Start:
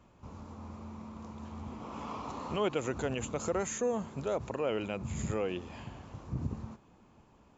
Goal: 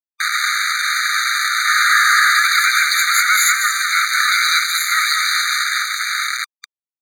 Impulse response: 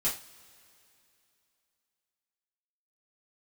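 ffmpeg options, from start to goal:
-filter_complex "[0:a]acrossover=split=230|2300[a][b][c];[b]adynamicequalizer=threshold=0.00398:dfrequency=550:dqfactor=2:tfrequency=550:tqfactor=2:attack=5:release=100:ratio=0.375:range=2:mode=cutabove:tftype=bell[d];[c]asoftclip=type=tanh:threshold=-37.5dB[e];[a][d][e]amix=inputs=3:normalize=0,asplit=2[f][g];[g]asetrate=66075,aresample=44100,atempo=0.66742,volume=-2dB[h];[f][h]amix=inputs=2:normalize=0,aecho=1:1:213:0.447,asetrate=47628,aresample=44100,asplit=2[i][j];[j]acompressor=threshold=-43dB:ratio=5,volume=-2dB[k];[i][k]amix=inputs=2:normalize=0,acrusher=bits=6:mix=0:aa=0.000001,lowpass=4k,aemphasis=mode=production:type=75fm,apsyclip=31dB,acontrast=69,afftfilt=real='re*eq(mod(floor(b*sr/1024/1200),2),1)':imag='im*eq(mod(floor(b*sr/1024/1200),2),1)':win_size=1024:overlap=0.75,volume=-4.5dB"

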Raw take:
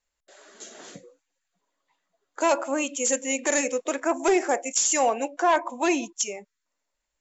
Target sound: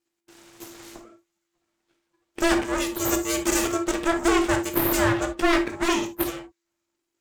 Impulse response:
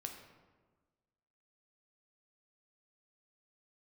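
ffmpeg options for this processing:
-filter_complex "[0:a]aeval=exprs='abs(val(0))':c=same,aeval=exprs='val(0)*sin(2*PI*340*n/s)':c=same[a];[1:a]atrim=start_sample=2205,atrim=end_sample=3087,asetrate=38367,aresample=44100[b];[a][b]afir=irnorm=-1:irlink=0,volume=8.5dB"

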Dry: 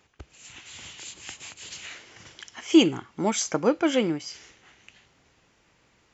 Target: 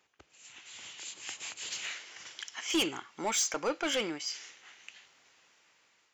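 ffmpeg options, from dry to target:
-af "asetnsamples=n=441:p=0,asendcmd='1.91 highpass f 1400',highpass=f=490:p=1,dynaudnorm=f=550:g=5:m=11dB,asoftclip=type=tanh:threshold=-17dB,volume=-6.5dB"

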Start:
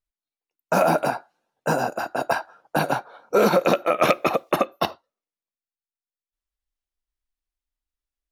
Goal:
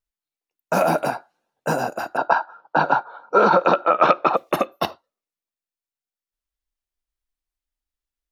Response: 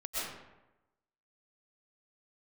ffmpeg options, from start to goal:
-filter_complex "[0:a]asettb=1/sr,asplit=3[a][b][c];[a]atrim=end=2.174[d];[b]atrim=start=2.17:end=4.37,asetpts=PTS-STARTPTS,afade=t=in:d=0.004:c=qsin,afade=t=out:st=2.196:d=0.004:c=qsin,highpass=f=150:w=0.5412,highpass=f=150:w=1.3066,equalizer=f=230:t=q:w=4:g=-4,equalizer=f=920:t=q:w=4:g=10,equalizer=f=1.4k:t=q:w=4:g=9,equalizer=f=2.1k:t=q:w=4:g=-9,equalizer=f=3.2k:t=q:w=4:g=-3,lowpass=f=4.4k:w=0.5412,lowpass=f=4.4k:w=1.3066[e];[c]atrim=start=4.366[f];[d][e]acrossfade=d=0.004:c1=hsin:c2=qsin[g];[g][f]acrossfade=d=0.004:c1=qsin:c2=hsin"

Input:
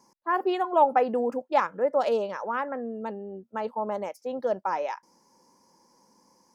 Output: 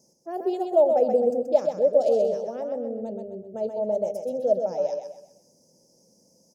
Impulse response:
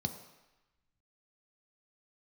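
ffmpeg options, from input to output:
-filter_complex "[0:a]firequalizer=gain_entry='entry(400,0);entry(630,8);entry(1000,-27);entry(5000,2)':delay=0.05:min_phase=1,aecho=1:1:128|256|384|512:0.531|0.186|0.065|0.0228,asplit=2[a][b];[1:a]atrim=start_sample=2205[c];[b][c]afir=irnorm=-1:irlink=0,volume=-16.5dB[d];[a][d]amix=inputs=2:normalize=0,volume=1.5dB"

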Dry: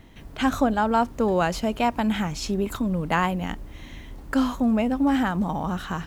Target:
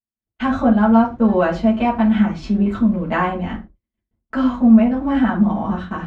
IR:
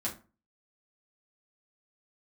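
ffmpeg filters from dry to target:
-filter_complex "[0:a]agate=range=-57dB:threshold=-32dB:ratio=16:detection=peak,lowpass=3k[a];[1:a]atrim=start_sample=2205,atrim=end_sample=6174[b];[a][b]afir=irnorm=-1:irlink=0"

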